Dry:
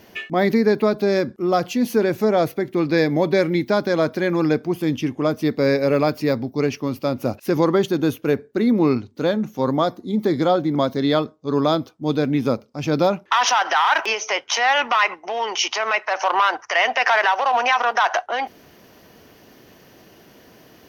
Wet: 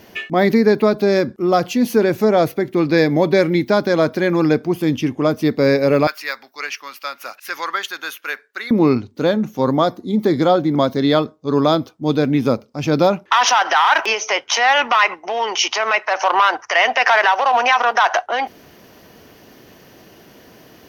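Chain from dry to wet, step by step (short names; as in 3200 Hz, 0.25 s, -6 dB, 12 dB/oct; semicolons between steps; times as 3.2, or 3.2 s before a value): 6.07–8.71 resonant high-pass 1500 Hz, resonance Q 1.8; gain +3.5 dB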